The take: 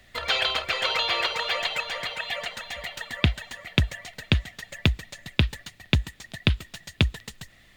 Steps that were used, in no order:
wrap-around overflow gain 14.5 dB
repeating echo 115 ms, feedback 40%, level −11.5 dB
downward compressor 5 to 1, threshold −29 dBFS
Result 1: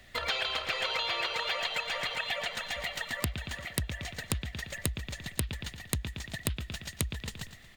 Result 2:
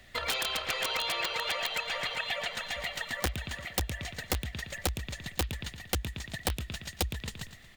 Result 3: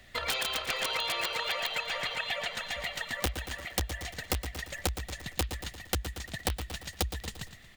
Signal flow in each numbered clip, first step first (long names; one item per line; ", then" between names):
repeating echo, then downward compressor, then wrap-around overflow
repeating echo, then wrap-around overflow, then downward compressor
wrap-around overflow, then repeating echo, then downward compressor